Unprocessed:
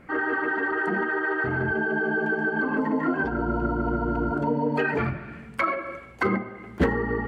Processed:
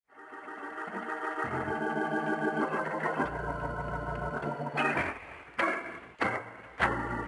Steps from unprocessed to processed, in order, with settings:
fade in at the beginning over 2.12 s
low-pass filter 1,900 Hz 12 dB per octave
spectral tilt +3.5 dB per octave
gate on every frequency bin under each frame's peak −10 dB weak
level +5 dB
IMA ADPCM 88 kbit/s 22,050 Hz

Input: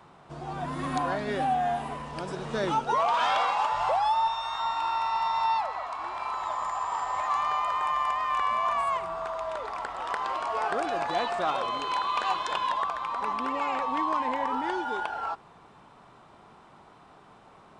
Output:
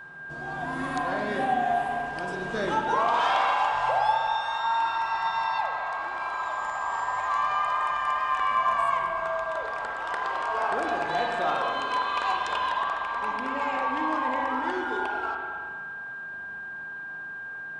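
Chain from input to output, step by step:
steady tone 1,600 Hz −39 dBFS
spring reverb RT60 1.9 s, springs 38/51 ms, chirp 55 ms, DRR 1 dB
level −1.5 dB

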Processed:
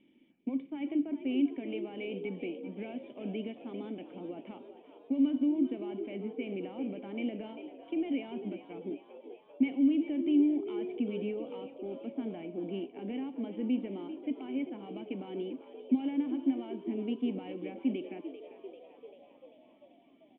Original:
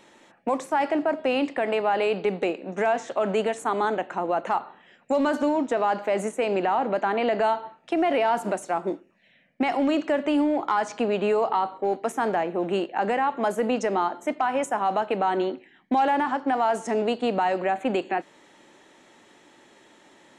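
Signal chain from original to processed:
formant resonators in series i
on a send: echo with shifted repeats 393 ms, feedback 61%, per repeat +64 Hz, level −12 dB

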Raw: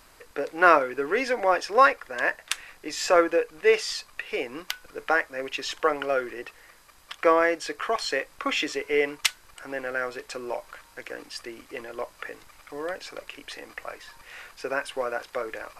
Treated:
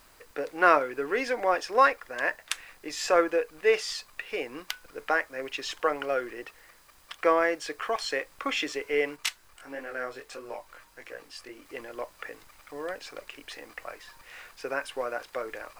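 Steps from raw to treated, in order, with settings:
background noise blue −63 dBFS
0:09.16–0:11.65: multi-voice chorus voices 2, 1.5 Hz, delay 21 ms, depth 3 ms
level −3 dB

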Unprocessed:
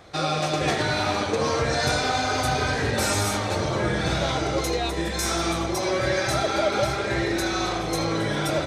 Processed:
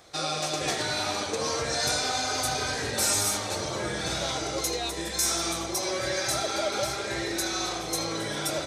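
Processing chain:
bass and treble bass −5 dB, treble +11 dB
level −6 dB

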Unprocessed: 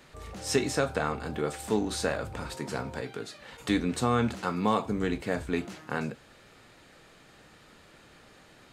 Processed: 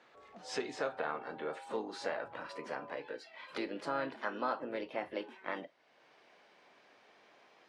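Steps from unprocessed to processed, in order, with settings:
gliding playback speed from 94% → 133%
noise reduction from a noise print of the clip's start 11 dB
spectral tilt −2.5 dB per octave
downward compressor 1.5 to 1, threshold −56 dBFS, peak gain reduction 14 dB
pitch-shifted copies added +3 semitones −10 dB
band-pass filter 570–5,100 Hz
level +6 dB

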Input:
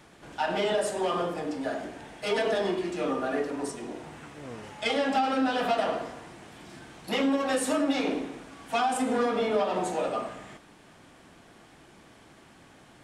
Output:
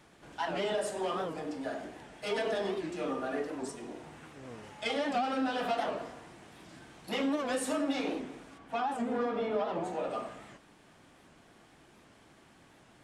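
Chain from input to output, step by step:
0:08.57–0:10.09: low-pass filter 1,600 Hz → 2,900 Hz 6 dB per octave
wow of a warped record 78 rpm, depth 160 cents
level −5.5 dB

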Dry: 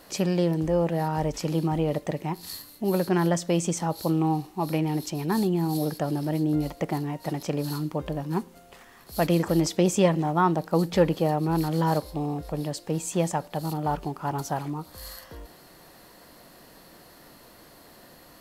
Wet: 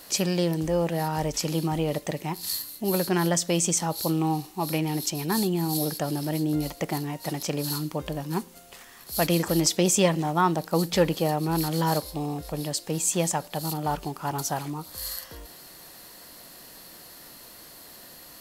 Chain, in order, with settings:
high-shelf EQ 2,600 Hz +11.5 dB
level −1.5 dB

